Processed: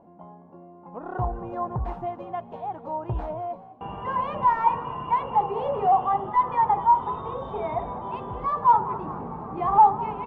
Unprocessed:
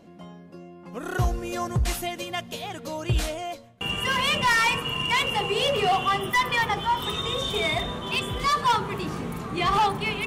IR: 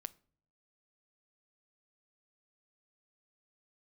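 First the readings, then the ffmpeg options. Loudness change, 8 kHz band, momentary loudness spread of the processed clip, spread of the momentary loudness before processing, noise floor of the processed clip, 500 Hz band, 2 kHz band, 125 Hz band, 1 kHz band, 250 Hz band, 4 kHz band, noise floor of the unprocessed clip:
0.0 dB, under -40 dB, 15 LU, 12 LU, -48 dBFS, -1.5 dB, -17.0 dB, -5.0 dB, +4.5 dB, -4.5 dB, under -25 dB, -46 dBFS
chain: -filter_complex "[0:a]lowpass=f=890:t=q:w=4.9,asplit=4[a][b][c][d];[b]adelay=205,afreqshift=62,volume=-16.5dB[e];[c]adelay=410,afreqshift=124,volume=-24.5dB[f];[d]adelay=615,afreqshift=186,volume=-32.4dB[g];[a][e][f][g]amix=inputs=4:normalize=0,volume=-5.5dB"

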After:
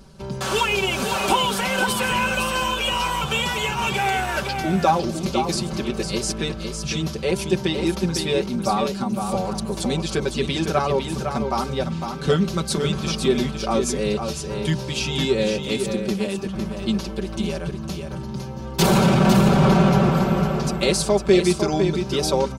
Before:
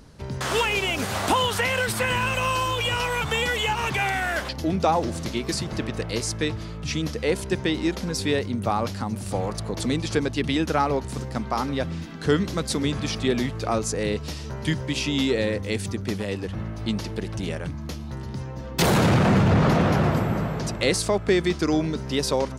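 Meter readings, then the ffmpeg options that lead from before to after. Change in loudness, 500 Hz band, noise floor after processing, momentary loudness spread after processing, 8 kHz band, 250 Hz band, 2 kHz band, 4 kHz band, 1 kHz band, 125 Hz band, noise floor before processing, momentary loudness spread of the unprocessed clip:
+3.0 dB, +3.5 dB, -31 dBFS, 10 LU, +3.5 dB, +3.5 dB, +1.0 dB, +3.0 dB, +3.0 dB, +2.0 dB, -35 dBFS, 9 LU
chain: -af "equalizer=f=1.9k:t=o:w=0.26:g=-9.5,aecho=1:1:5.2:0.89,aecho=1:1:505:0.473"

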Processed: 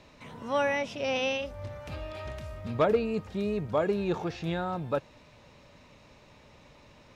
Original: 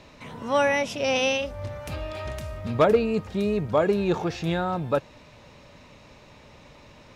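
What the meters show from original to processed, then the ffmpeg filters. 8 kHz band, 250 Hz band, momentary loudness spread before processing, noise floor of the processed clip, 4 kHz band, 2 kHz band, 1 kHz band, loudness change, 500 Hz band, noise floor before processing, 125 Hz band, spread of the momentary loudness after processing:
n/a, -5.5 dB, 13 LU, -56 dBFS, -6.5 dB, -5.5 dB, -5.5 dB, -5.5 dB, -5.5 dB, -51 dBFS, -5.5 dB, 13 LU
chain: -filter_complex "[0:a]acrossover=split=5200[a][b];[b]acompressor=threshold=-52dB:ratio=4:attack=1:release=60[c];[a][c]amix=inputs=2:normalize=0,volume=-5.5dB"

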